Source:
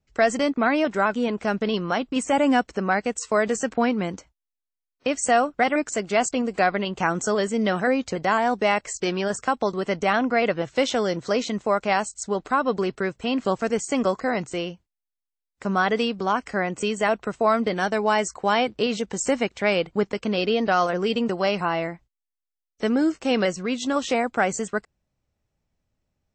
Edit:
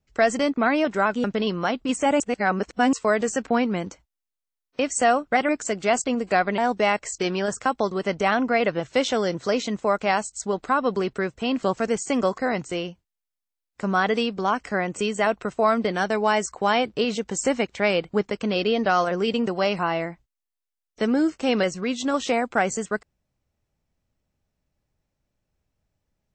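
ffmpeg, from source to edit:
ffmpeg -i in.wav -filter_complex "[0:a]asplit=5[link_01][link_02][link_03][link_04][link_05];[link_01]atrim=end=1.242[link_06];[link_02]atrim=start=1.508:end=2.472[link_07];[link_03]atrim=start=2.468:end=3.202,asetpts=PTS-STARTPTS,areverse[link_08];[link_04]atrim=start=3.198:end=6.852[link_09];[link_05]atrim=start=8.398[link_10];[link_06][link_07]acrossfade=duration=0.004:curve1=hsin:curve2=hsin[link_11];[link_11][link_08]acrossfade=duration=0.004:curve1=hsin:curve2=hsin[link_12];[link_12][link_09]acrossfade=duration=0.004:curve1=hsin:curve2=hsin[link_13];[link_13][link_10]acrossfade=duration=0.004:curve1=hsin:curve2=hsin" out.wav

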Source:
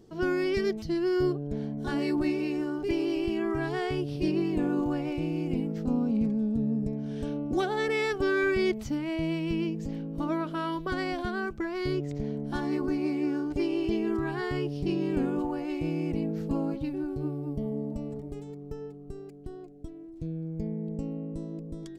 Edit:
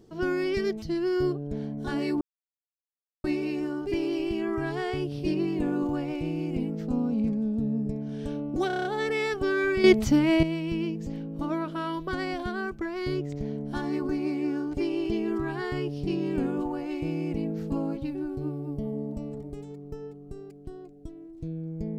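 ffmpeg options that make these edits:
ffmpeg -i in.wav -filter_complex "[0:a]asplit=10[link_01][link_02][link_03][link_04][link_05][link_06][link_07][link_08][link_09][link_10];[link_01]atrim=end=2.21,asetpts=PTS-STARTPTS,afade=type=out:start_time=2.206:duration=0.004:curve=hsin,apad=pad_dur=1.03[link_11];[link_02]atrim=start=2.21:end=7.672,asetpts=PTS-STARTPTS,afade=type=in:duration=0.004:curve=hsin[link_12];[link_03]atrim=start=7.638:end=7.672[link_13];[link_04]atrim=start=7.638:end=7.672[link_14];[link_05]atrim=start=7.638:end=7.672[link_15];[link_06]atrim=start=7.638:end=7.672[link_16];[link_07]atrim=start=7.638:end=7.672[link_17];[link_08]atrim=start=7.638:end=8.632[link_18];[link_09]atrim=start=8.628:end=9.222,asetpts=PTS-STARTPTS,volume=10dB[link_19];[link_10]atrim=start=9.218[link_20];[link_11][link_12]concat=n=2:v=0:a=1[link_21];[link_21][link_13]acrossfade=duration=0.004:curve1=hsin:curve2=hsin[link_22];[link_22][link_14]acrossfade=duration=0.004:curve1=hsin:curve2=hsin[link_23];[link_23][link_15]acrossfade=duration=0.004:curve1=hsin:curve2=hsin[link_24];[link_24][link_16]acrossfade=duration=0.004:curve1=hsin:curve2=hsin[link_25];[link_25][link_17]acrossfade=duration=0.004:curve1=hsin:curve2=hsin[link_26];[link_26][link_18]acrossfade=duration=0.004:curve1=hsin:curve2=hsin[link_27];[link_27][link_19]acrossfade=duration=0.004:curve1=hsin:curve2=hsin[link_28];[link_28][link_20]acrossfade=duration=0.004:curve1=hsin:curve2=hsin" out.wav

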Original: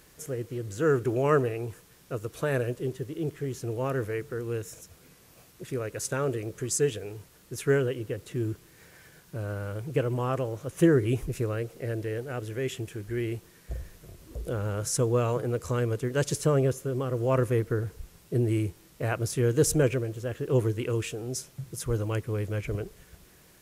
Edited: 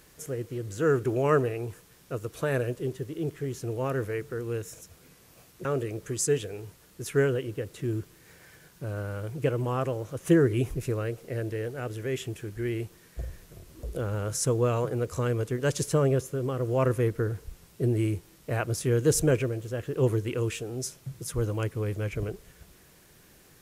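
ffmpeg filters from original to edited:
ffmpeg -i in.wav -filter_complex "[0:a]asplit=2[link_01][link_02];[link_01]atrim=end=5.652[link_03];[link_02]atrim=start=6.168[link_04];[link_03][link_04]acrossfade=duration=0.004:curve1=hsin:curve2=hsin" out.wav

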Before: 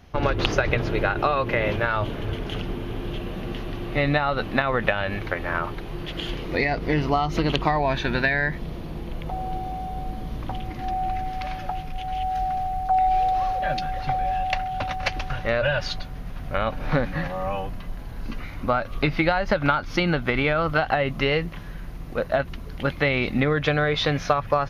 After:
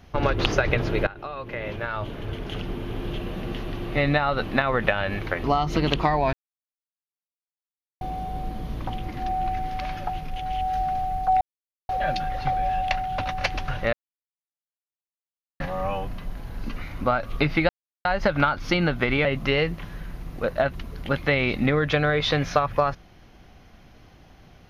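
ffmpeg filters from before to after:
ffmpeg -i in.wav -filter_complex "[0:a]asplit=11[link_01][link_02][link_03][link_04][link_05][link_06][link_07][link_08][link_09][link_10][link_11];[link_01]atrim=end=1.07,asetpts=PTS-STARTPTS,afade=type=out:start_time=1.066:duration=0.004:curve=hsin:silence=0.133352[link_12];[link_02]atrim=start=1.07:end=5.442,asetpts=PTS-STARTPTS,afade=type=in:duration=1.97:silence=0.133352[link_13];[link_03]atrim=start=7.058:end=7.95,asetpts=PTS-STARTPTS,afade=type=out:start_time=0.888:duration=0.004:curve=hsin[link_14];[link_04]atrim=start=7.95:end=9.63,asetpts=PTS-STARTPTS,volume=0[link_15];[link_05]atrim=start=9.63:end=13.03,asetpts=PTS-STARTPTS,afade=type=in:duration=0.004:curve=hsin,afade=type=out:start_time=3.396:duration=0.004:curve=hsin[link_16];[link_06]atrim=start=13.03:end=13.51,asetpts=PTS-STARTPTS,volume=0[link_17];[link_07]atrim=start=13.51:end=15.55,asetpts=PTS-STARTPTS,afade=type=in:duration=0.004:curve=hsin,afade=type=out:start_time=2.036:duration=0.004:curve=hsin[link_18];[link_08]atrim=start=15.55:end=17.22,asetpts=PTS-STARTPTS,volume=0[link_19];[link_09]atrim=start=17.22:end=19.31,asetpts=PTS-STARTPTS,afade=type=in:duration=0.004:curve=hsin,afade=type=out:start_time=2.086:duration=0.004:curve=hsin,apad=pad_dur=0.36[link_20];[link_10]atrim=start=19.31:end=20.512,asetpts=PTS-STARTPTS,afade=type=in:duration=0.004:curve=hsin[link_21];[link_11]atrim=start=20.988[link_22];[link_12][link_13]concat=n=2:v=0:a=1[link_23];[link_14][link_15][link_16][link_17][link_18][link_19][link_20][link_21]concat=n=8:v=0:a=1[link_24];[link_23][link_24]acrossfade=duration=0.004:curve1=hsin:curve2=hsin[link_25];[link_25][link_22]acrossfade=duration=0.004:curve1=hsin:curve2=hsin" out.wav

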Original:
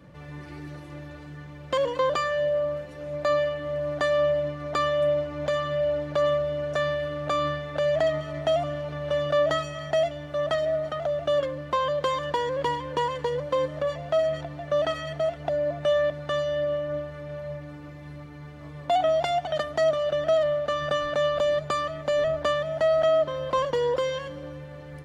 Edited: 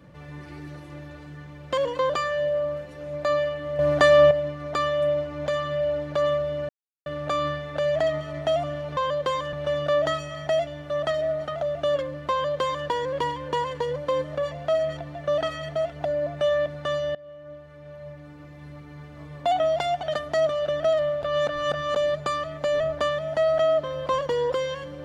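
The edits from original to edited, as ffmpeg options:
ffmpeg -i in.wav -filter_complex "[0:a]asplit=10[link_01][link_02][link_03][link_04][link_05][link_06][link_07][link_08][link_09][link_10];[link_01]atrim=end=3.792[link_11];[link_02]atrim=start=3.788:end=4.312,asetpts=PTS-STARTPTS,volume=8dB[link_12];[link_03]atrim=start=4.308:end=6.69,asetpts=PTS-STARTPTS,afade=type=out:start_time=2.378:duration=0.004:curve=hsin[link_13];[link_04]atrim=start=6.69:end=7.06,asetpts=PTS-STARTPTS,volume=0[link_14];[link_05]atrim=start=7.06:end=8.972,asetpts=PTS-STARTPTS,afade=type=in:duration=0.004:curve=hsin[link_15];[link_06]atrim=start=11.748:end=12.312[link_16];[link_07]atrim=start=8.968:end=16.59,asetpts=PTS-STARTPTS,afade=type=out:start_time=7.618:duration=0.004:curve=hsin:silence=0.0841395[link_17];[link_08]atrim=start=16.59:end=20.672,asetpts=PTS-STARTPTS,afade=type=in:duration=1.8:silence=0.0841395[link_18];[link_09]atrim=start=20.668:end=21.402,asetpts=PTS-STARTPTS,areverse[link_19];[link_10]atrim=start=21.398[link_20];[link_11][link_12]acrossfade=duration=0.004:curve1=hsin:curve2=hsin[link_21];[link_13][link_14][link_15]concat=n=3:v=0:a=1[link_22];[link_21][link_22]acrossfade=duration=0.004:curve1=hsin:curve2=hsin[link_23];[link_23][link_16]acrossfade=duration=0.004:curve1=hsin:curve2=hsin[link_24];[link_17][link_18]concat=n=2:v=0:a=1[link_25];[link_24][link_25]acrossfade=duration=0.004:curve1=hsin:curve2=hsin[link_26];[link_26][link_19]acrossfade=duration=0.004:curve1=hsin:curve2=hsin[link_27];[link_27][link_20]acrossfade=duration=0.004:curve1=hsin:curve2=hsin" out.wav

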